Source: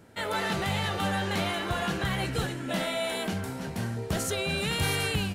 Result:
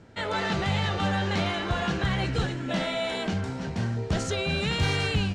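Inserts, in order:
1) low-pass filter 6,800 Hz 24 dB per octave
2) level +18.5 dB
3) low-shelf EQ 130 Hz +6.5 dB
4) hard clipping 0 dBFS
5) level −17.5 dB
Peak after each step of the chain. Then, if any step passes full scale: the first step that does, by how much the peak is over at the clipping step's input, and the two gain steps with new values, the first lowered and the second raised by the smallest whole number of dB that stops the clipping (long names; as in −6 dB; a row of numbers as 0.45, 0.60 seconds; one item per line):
−16.5, +2.0, +4.0, 0.0, −17.5 dBFS
step 2, 4.0 dB
step 2 +14.5 dB, step 5 −13.5 dB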